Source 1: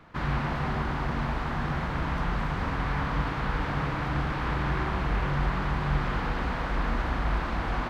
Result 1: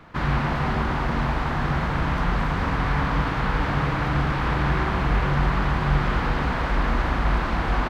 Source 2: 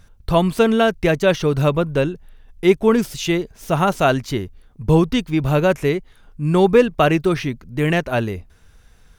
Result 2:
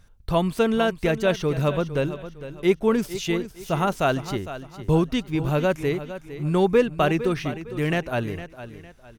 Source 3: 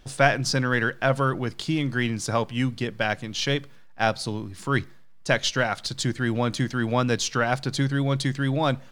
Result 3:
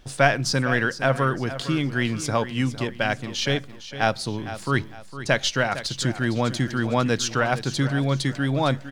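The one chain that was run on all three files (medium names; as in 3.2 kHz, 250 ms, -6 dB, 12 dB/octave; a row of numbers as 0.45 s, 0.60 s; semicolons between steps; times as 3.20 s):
feedback delay 457 ms, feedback 34%, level -13 dB; normalise loudness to -24 LUFS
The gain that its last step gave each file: +5.5 dB, -5.5 dB, +1.0 dB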